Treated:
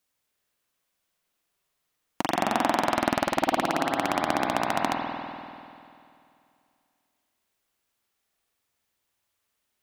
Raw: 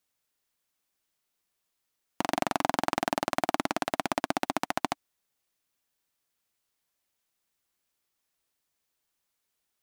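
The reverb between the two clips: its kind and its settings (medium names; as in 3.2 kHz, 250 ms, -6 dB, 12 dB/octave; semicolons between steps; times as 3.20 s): spring tank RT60 2.5 s, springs 49 ms, chirp 45 ms, DRR -0.5 dB; trim +1.5 dB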